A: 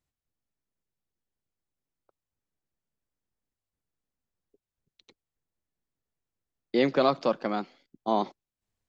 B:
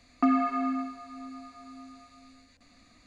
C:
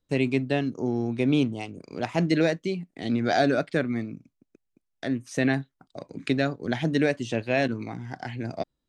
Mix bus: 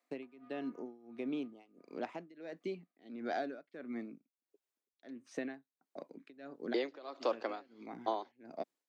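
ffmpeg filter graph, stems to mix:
ffmpeg -i stem1.wav -i stem2.wav -i stem3.wav -filter_complex "[0:a]volume=0.5dB,asplit=2[link_01][link_02];[1:a]lowpass=1900,acompressor=threshold=-43dB:ratio=1.5,aeval=exprs='(tanh(39.8*val(0)+0.55)-tanh(0.55))/39.8':channel_layout=same,volume=-15.5dB[link_03];[2:a]agate=range=-33dB:threshold=-44dB:ratio=3:detection=peak,aemphasis=mode=reproduction:type=75fm,acompressor=threshold=-25dB:ratio=6,volume=-7.5dB[link_04];[link_02]apad=whole_len=391977[link_05];[link_04][link_05]sidechaincompress=threshold=-31dB:ratio=8:attack=16:release=328[link_06];[link_01][link_03]amix=inputs=2:normalize=0,highpass=frequency=300:width=0.5412,highpass=frequency=300:width=1.3066,acompressor=threshold=-30dB:ratio=3,volume=0dB[link_07];[link_06][link_07]amix=inputs=2:normalize=0,highpass=frequency=230:width=0.5412,highpass=frequency=230:width=1.3066,tremolo=f=1.5:d=0.92" out.wav

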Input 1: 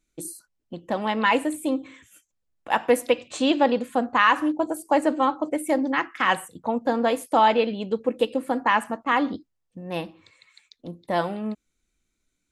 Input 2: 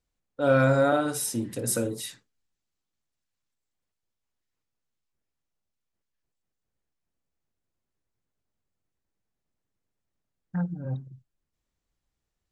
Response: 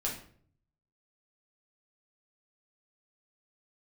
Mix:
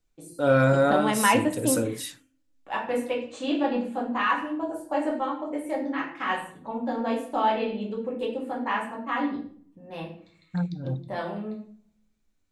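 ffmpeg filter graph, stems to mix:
-filter_complex "[0:a]highshelf=frequency=9000:gain=-11,bandreject=frequency=60:width_type=h:width=6,bandreject=frequency=120:width_type=h:width=6,bandreject=frequency=180:width_type=h:width=6,volume=-3.5dB,asplit=2[link_01][link_02];[link_02]volume=-6.5dB[link_03];[1:a]volume=1dB,asplit=2[link_04][link_05];[link_05]apad=whole_len=551861[link_06];[link_01][link_06]sidechaingate=range=-33dB:threshold=-35dB:ratio=16:detection=peak[link_07];[2:a]atrim=start_sample=2205[link_08];[link_03][link_08]afir=irnorm=-1:irlink=0[link_09];[link_07][link_04][link_09]amix=inputs=3:normalize=0"

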